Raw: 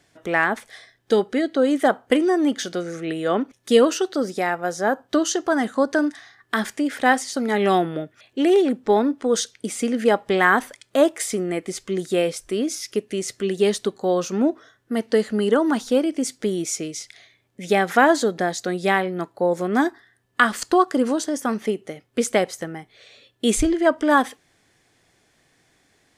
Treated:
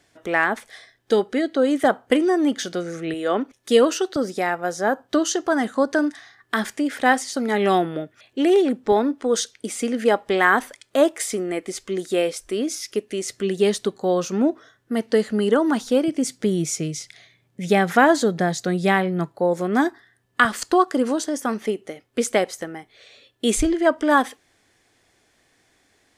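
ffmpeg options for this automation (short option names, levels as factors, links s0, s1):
-af "asetnsamples=n=441:p=0,asendcmd='1.84 equalizer g 1;3.14 equalizer g -10.5;4.16 equalizer g -1.5;8.92 equalizer g -9;13.33 equalizer g 2.5;16.08 equalizer g 12.5;19.32 equalizer g 2.5;20.45 equalizer g -7',equalizer=f=150:t=o:w=0.62:g=-5"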